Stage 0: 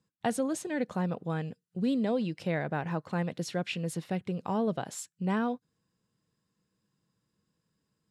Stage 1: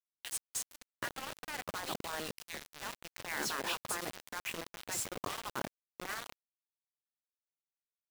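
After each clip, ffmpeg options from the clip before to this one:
-filter_complex "[0:a]acrossover=split=2500[a][b];[a]adelay=780[c];[c][b]amix=inputs=2:normalize=0,afftfilt=real='re*lt(hypot(re,im),0.0631)':imag='im*lt(hypot(re,im),0.0631)':win_size=1024:overlap=0.75,acrusher=bits=6:mix=0:aa=0.000001,volume=3.5dB"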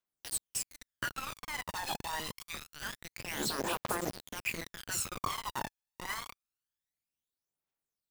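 -af "aphaser=in_gain=1:out_gain=1:delay=1.2:decay=0.66:speed=0.26:type=triangular"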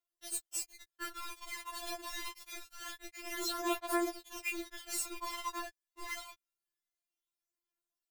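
-af "afftfilt=real='re*4*eq(mod(b,16),0)':imag='im*4*eq(mod(b,16),0)':win_size=2048:overlap=0.75"

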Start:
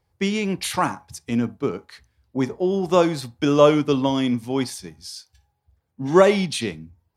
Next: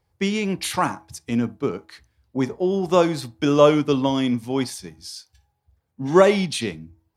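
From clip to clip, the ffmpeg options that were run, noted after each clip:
-af "bandreject=f=323.3:t=h:w=4,bandreject=f=646.6:t=h:w=4"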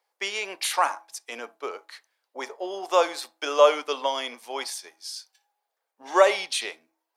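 -af "highpass=f=540:w=0.5412,highpass=f=540:w=1.3066"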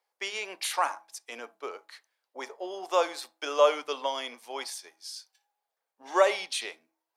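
-af "bandreject=f=50:t=h:w=6,bandreject=f=100:t=h:w=6,bandreject=f=150:t=h:w=6,bandreject=f=200:t=h:w=6,volume=-4.5dB"

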